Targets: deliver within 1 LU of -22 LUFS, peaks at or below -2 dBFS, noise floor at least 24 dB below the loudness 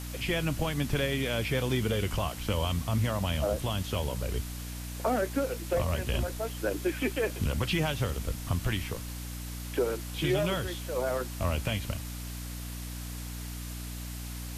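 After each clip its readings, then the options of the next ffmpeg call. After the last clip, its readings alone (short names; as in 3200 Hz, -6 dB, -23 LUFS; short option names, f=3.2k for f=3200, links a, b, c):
hum 60 Hz; harmonics up to 300 Hz; hum level -36 dBFS; noise floor -39 dBFS; noise floor target -56 dBFS; loudness -32.0 LUFS; peak -15.5 dBFS; loudness target -22.0 LUFS
-> -af "bandreject=f=60:t=h:w=4,bandreject=f=120:t=h:w=4,bandreject=f=180:t=h:w=4,bandreject=f=240:t=h:w=4,bandreject=f=300:t=h:w=4"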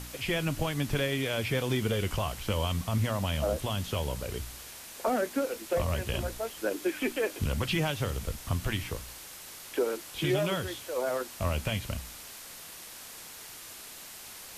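hum none; noise floor -46 dBFS; noise floor target -56 dBFS
-> -af "afftdn=nr=10:nf=-46"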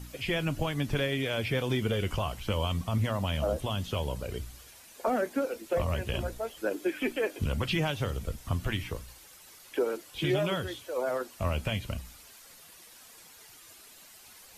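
noise floor -53 dBFS; noise floor target -56 dBFS
-> -af "afftdn=nr=6:nf=-53"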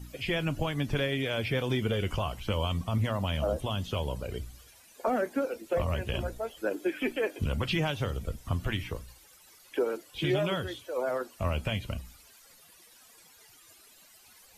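noise floor -57 dBFS; loudness -32.0 LUFS; peak -17.0 dBFS; loudness target -22.0 LUFS
-> -af "volume=10dB"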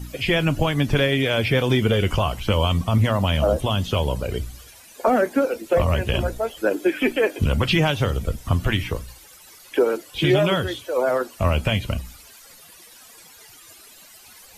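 loudness -22.0 LUFS; peak -7.0 dBFS; noise floor -47 dBFS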